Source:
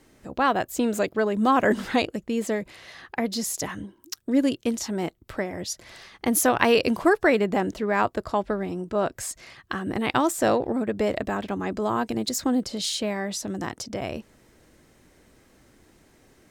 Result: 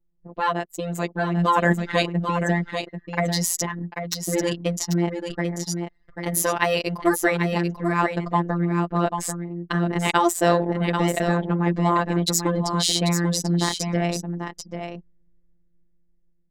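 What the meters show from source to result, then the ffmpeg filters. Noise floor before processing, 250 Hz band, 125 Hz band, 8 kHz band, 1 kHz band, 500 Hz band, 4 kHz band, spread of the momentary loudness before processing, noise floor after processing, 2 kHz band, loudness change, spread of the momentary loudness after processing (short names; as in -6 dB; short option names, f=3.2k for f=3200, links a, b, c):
-60 dBFS, +1.5 dB, +13.0 dB, +4.0 dB, +2.5 dB, 0.0 dB, +4.5 dB, 13 LU, -61 dBFS, +2.0 dB, +2.0 dB, 10 LU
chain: -af "anlmdn=15.8,aecho=1:1:4.8:0.38,dynaudnorm=f=270:g=11:m=8dB,afftfilt=real='hypot(re,im)*cos(PI*b)':imag='0':win_size=1024:overlap=0.75,aecho=1:1:790:0.447,volume=1.5dB"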